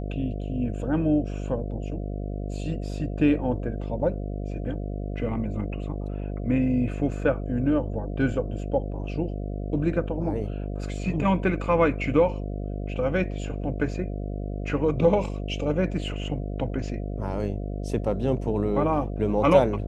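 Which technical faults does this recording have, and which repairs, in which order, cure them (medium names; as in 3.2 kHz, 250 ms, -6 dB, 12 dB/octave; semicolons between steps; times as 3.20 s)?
buzz 50 Hz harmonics 14 -31 dBFS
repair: de-hum 50 Hz, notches 14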